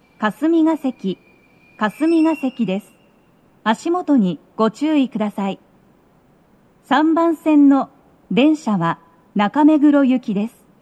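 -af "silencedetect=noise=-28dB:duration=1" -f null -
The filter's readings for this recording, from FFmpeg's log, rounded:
silence_start: 5.55
silence_end: 6.91 | silence_duration: 1.36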